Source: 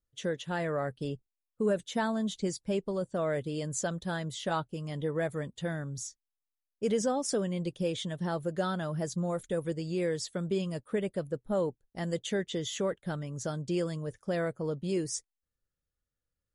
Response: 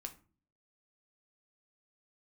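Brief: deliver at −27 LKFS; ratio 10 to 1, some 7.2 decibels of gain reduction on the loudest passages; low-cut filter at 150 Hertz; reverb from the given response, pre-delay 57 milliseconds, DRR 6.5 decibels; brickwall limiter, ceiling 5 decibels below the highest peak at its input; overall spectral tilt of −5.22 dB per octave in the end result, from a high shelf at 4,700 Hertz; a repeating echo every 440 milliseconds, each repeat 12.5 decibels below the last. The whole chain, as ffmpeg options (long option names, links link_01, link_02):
-filter_complex "[0:a]highpass=150,highshelf=frequency=4700:gain=-6.5,acompressor=threshold=-32dB:ratio=10,alimiter=level_in=5dB:limit=-24dB:level=0:latency=1,volume=-5dB,aecho=1:1:440|880|1320:0.237|0.0569|0.0137,asplit=2[link_01][link_02];[1:a]atrim=start_sample=2205,adelay=57[link_03];[link_02][link_03]afir=irnorm=-1:irlink=0,volume=-3dB[link_04];[link_01][link_04]amix=inputs=2:normalize=0,volume=11.5dB"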